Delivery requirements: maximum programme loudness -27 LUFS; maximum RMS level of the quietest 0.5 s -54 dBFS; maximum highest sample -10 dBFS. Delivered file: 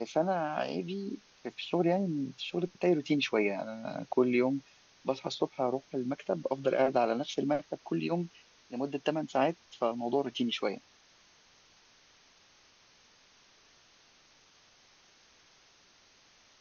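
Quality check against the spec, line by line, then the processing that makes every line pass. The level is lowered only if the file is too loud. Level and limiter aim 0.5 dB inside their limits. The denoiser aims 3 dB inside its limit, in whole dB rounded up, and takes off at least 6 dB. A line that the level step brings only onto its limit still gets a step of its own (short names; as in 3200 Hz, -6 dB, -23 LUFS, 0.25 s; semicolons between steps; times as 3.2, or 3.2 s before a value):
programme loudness -32.5 LUFS: OK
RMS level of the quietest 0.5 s -63 dBFS: OK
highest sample -14.0 dBFS: OK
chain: none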